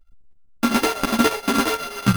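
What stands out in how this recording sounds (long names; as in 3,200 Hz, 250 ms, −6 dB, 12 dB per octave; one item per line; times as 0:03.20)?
a buzz of ramps at a fixed pitch in blocks of 32 samples
chopped level 8.4 Hz, depth 60%, duty 75%
aliases and images of a low sample rate 7,600 Hz, jitter 0%
a shimmering, thickened sound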